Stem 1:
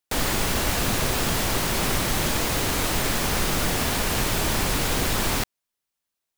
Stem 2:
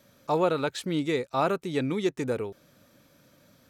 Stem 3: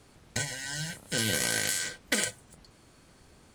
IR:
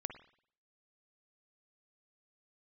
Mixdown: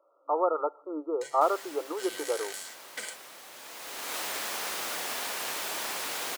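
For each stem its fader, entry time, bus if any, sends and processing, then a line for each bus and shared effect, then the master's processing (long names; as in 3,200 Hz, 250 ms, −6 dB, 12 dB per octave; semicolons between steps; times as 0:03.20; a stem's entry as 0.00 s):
−12.0 dB, 1.30 s, send −16.5 dB, automatic ducking −19 dB, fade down 1.95 s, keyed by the second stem
−1.0 dB, 0.00 s, send −15 dB, brick-wall band-pass 290–1,400 Hz
−15.0 dB, 0.85 s, no send, multiband upward and downward expander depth 70%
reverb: on, pre-delay 48 ms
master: high-pass filter 560 Hz 12 dB per octave; automatic gain control gain up to 3.5 dB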